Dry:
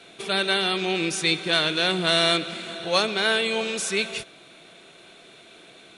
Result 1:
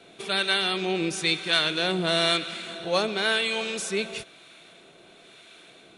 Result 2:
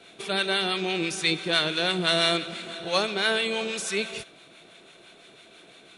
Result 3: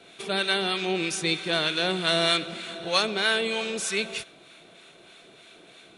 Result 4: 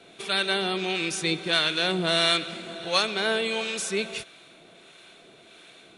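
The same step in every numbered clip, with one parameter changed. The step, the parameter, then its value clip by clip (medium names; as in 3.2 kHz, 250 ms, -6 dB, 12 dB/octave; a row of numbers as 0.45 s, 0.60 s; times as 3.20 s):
harmonic tremolo, rate: 1 Hz, 6 Hz, 3.2 Hz, 1.5 Hz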